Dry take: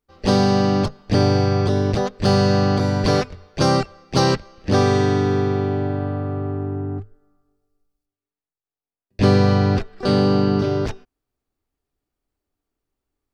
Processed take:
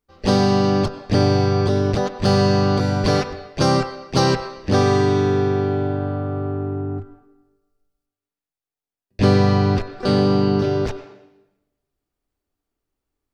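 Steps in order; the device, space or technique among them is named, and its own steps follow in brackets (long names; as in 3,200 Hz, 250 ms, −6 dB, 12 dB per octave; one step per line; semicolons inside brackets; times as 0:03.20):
filtered reverb send (on a send: high-pass filter 300 Hz 12 dB per octave + low-pass filter 3,900 Hz 12 dB per octave + convolution reverb RT60 0.95 s, pre-delay 87 ms, DRR 11 dB)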